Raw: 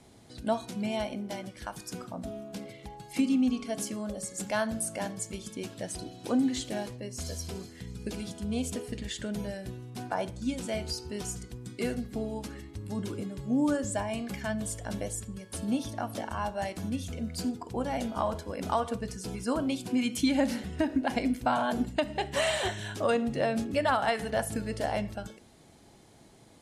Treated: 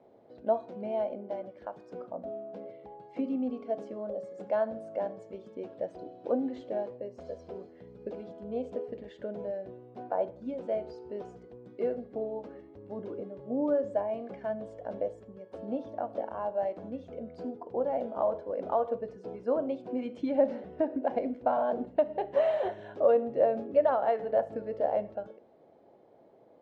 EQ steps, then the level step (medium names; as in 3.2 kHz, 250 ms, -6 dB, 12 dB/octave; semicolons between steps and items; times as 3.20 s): band-pass filter 540 Hz, Q 2.8; distance through air 120 m; +7.0 dB